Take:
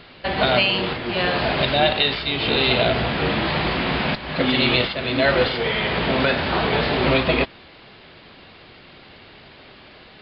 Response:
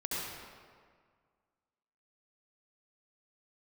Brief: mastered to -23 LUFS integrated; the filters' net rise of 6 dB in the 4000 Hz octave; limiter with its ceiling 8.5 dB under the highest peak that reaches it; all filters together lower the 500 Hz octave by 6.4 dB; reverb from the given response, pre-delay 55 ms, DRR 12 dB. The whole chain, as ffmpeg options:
-filter_complex "[0:a]equalizer=f=500:t=o:g=-8.5,equalizer=f=4k:t=o:g=7.5,alimiter=limit=-10.5dB:level=0:latency=1,asplit=2[a][b];[1:a]atrim=start_sample=2205,adelay=55[c];[b][c]afir=irnorm=-1:irlink=0,volume=-16.5dB[d];[a][d]amix=inputs=2:normalize=0,volume=-3.5dB"

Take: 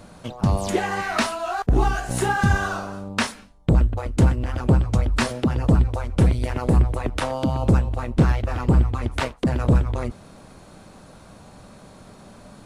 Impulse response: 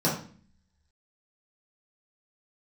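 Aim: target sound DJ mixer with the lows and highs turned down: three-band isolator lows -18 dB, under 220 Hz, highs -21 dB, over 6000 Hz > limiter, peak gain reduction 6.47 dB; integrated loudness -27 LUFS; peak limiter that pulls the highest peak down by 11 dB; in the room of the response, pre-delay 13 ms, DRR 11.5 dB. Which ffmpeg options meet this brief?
-filter_complex "[0:a]alimiter=limit=-18dB:level=0:latency=1,asplit=2[a][b];[1:a]atrim=start_sample=2205,adelay=13[c];[b][c]afir=irnorm=-1:irlink=0,volume=-24dB[d];[a][d]amix=inputs=2:normalize=0,acrossover=split=220 6000:gain=0.126 1 0.0891[e][f][g];[e][f][g]amix=inputs=3:normalize=0,volume=7dB,alimiter=limit=-16dB:level=0:latency=1"

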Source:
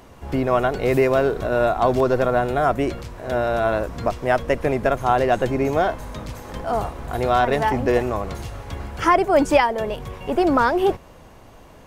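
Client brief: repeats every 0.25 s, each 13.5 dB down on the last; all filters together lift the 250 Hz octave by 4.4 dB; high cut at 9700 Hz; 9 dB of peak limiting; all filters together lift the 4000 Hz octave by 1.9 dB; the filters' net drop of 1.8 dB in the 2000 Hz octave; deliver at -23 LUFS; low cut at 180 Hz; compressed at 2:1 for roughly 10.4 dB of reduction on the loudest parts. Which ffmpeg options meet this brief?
-af "highpass=180,lowpass=9.7k,equalizer=f=250:t=o:g=6.5,equalizer=f=2k:t=o:g=-3.5,equalizer=f=4k:t=o:g=4,acompressor=threshold=-30dB:ratio=2,alimiter=limit=-22.5dB:level=0:latency=1,aecho=1:1:250|500:0.211|0.0444,volume=9dB"

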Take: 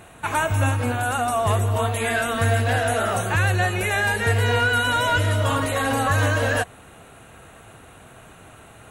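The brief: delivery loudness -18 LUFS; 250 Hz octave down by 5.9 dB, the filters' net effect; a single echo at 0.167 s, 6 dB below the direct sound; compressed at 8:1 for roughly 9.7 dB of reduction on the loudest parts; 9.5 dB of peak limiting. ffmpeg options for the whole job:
-af "equalizer=f=250:t=o:g=-7,acompressor=threshold=-27dB:ratio=8,alimiter=level_in=2.5dB:limit=-24dB:level=0:latency=1,volume=-2.5dB,aecho=1:1:167:0.501,volume=15.5dB"

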